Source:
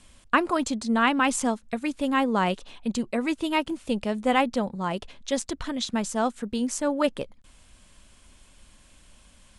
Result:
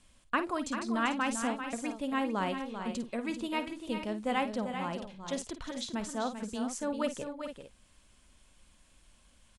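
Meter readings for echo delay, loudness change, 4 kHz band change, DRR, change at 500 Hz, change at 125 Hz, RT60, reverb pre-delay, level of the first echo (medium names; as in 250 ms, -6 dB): 52 ms, -8.0 dB, -8.0 dB, no reverb, -8.0 dB, -8.0 dB, no reverb, no reverb, -11.5 dB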